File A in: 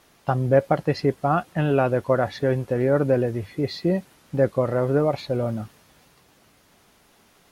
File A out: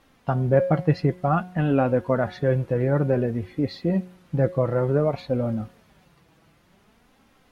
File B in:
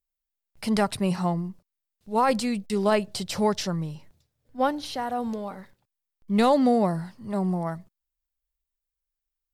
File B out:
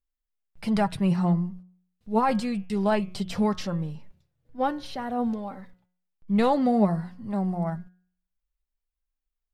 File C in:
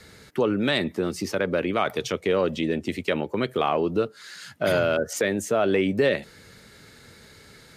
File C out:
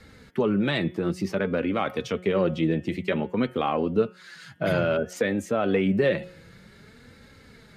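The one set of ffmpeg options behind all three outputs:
-af "bass=f=250:g=6,treble=f=4k:g=-8,flanger=delay=3.7:depth=2.5:regen=41:speed=0.55:shape=sinusoidal,bandreject=f=181.4:t=h:w=4,bandreject=f=362.8:t=h:w=4,bandreject=f=544.2:t=h:w=4,bandreject=f=725.6:t=h:w=4,bandreject=f=907:t=h:w=4,bandreject=f=1.0884k:t=h:w=4,bandreject=f=1.2698k:t=h:w=4,bandreject=f=1.4512k:t=h:w=4,bandreject=f=1.6326k:t=h:w=4,bandreject=f=1.814k:t=h:w=4,bandreject=f=1.9954k:t=h:w=4,bandreject=f=2.1768k:t=h:w=4,bandreject=f=2.3582k:t=h:w=4,bandreject=f=2.5396k:t=h:w=4,bandreject=f=2.721k:t=h:w=4,bandreject=f=2.9024k:t=h:w=4,bandreject=f=3.0838k:t=h:w=4,bandreject=f=3.2652k:t=h:w=4,bandreject=f=3.4466k:t=h:w=4,volume=2dB"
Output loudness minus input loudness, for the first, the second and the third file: -0.5, -0.5, -1.0 LU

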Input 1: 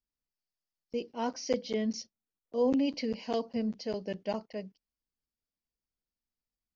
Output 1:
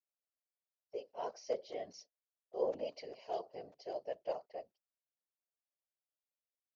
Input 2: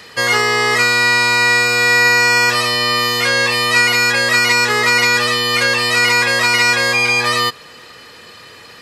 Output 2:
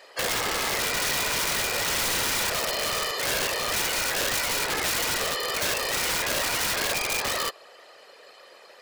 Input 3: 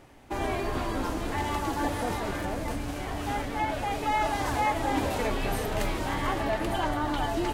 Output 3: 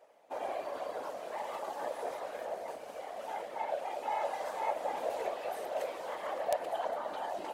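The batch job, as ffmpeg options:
-af "highpass=f=590:t=q:w=4.9,afftfilt=real='hypot(re,im)*cos(2*PI*random(0))':imag='hypot(re,im)*sin(2*PI*random(1))':win_size=512:overlap=0.75,aeval=exprs='(mod(4.47*val(0)+1,2)-1)/4.47':c=same,volume=-7.5dB"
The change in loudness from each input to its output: -9.0, -12.5, -8.0 LU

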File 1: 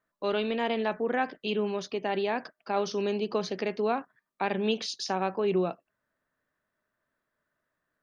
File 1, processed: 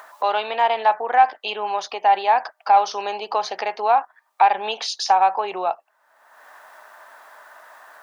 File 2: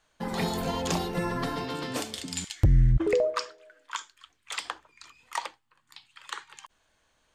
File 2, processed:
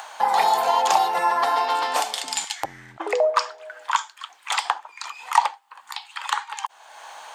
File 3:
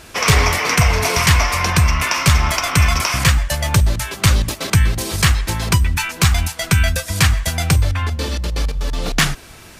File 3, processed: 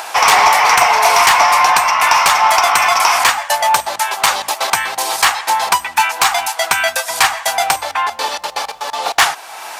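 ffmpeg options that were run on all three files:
-filter_complex "[0:a]asplit=2[a][b];[b]acompressor=mode=upward:threshold=-20dB:ratio=2.5,volume=-2dB[c];[a][c]amix=inputs=2:normalize=0,highpass=f=820:t=q:w=4.9,asoftclip=type=tanh:threshold=-2.5dB"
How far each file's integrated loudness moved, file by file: +9.5, +6.5, +4.0 LU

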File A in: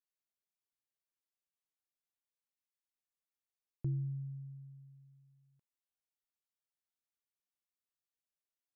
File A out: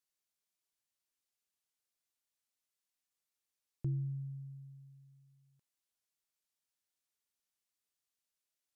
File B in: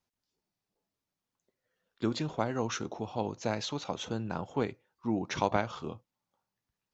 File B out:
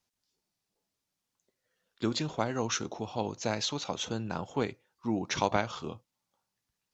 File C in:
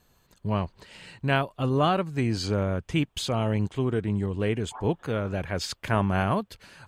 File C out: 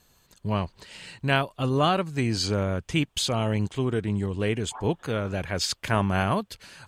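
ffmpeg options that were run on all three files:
-af "equalizer=f=7.1k:t=o:w=2.7:g=6.5"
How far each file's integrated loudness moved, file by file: 0.0, +1.0, +1.0 LU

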